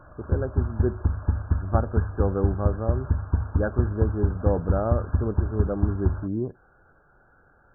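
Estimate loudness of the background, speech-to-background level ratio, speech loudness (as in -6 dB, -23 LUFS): -27.5 LUFS, -2.0 dB, -29.5 LUFS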